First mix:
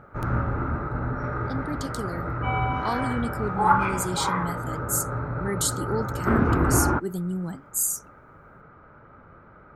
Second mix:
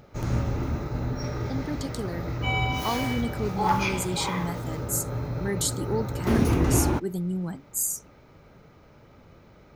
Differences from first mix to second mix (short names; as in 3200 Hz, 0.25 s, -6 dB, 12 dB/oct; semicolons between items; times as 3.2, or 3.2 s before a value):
background: remove synth low-pass 1400 Hz, resonance Q 4.4; master: add bell 10000 Hz -3.5 dB 0.73 oct